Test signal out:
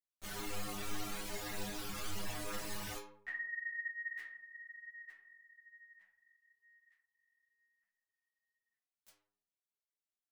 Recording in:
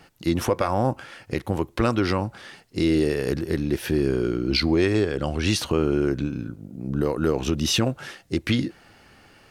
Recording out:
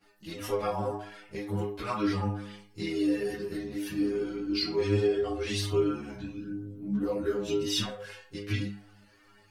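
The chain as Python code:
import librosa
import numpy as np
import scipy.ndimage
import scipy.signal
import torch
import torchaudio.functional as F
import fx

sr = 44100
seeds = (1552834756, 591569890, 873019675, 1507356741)

y = fx.stiff_resonator(x, sr, f0_hz=100.0, decay_s=0.7, stiffness=0.002)
y = fx.chorus_voices(y, sr, voices=4, hz=0.54, base_ms=16, depth_ms=3.8, mix_pct=70)
y = F.gain(torch.from_numpy(y), 7.5).numpy()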